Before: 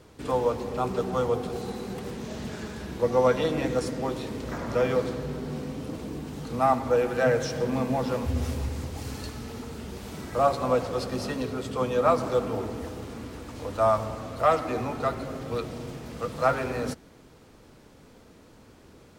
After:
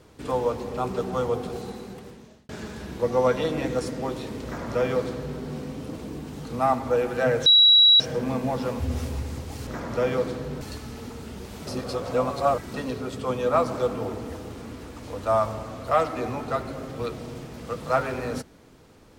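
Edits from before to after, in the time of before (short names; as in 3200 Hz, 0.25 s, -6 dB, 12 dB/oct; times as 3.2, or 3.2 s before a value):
1.51–2.49 fade out
4.45–5.39 copy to 9.13
7.46 add tone 3890 Hz -11.5 dBFS 0.54 s
10.19–11.26 reverse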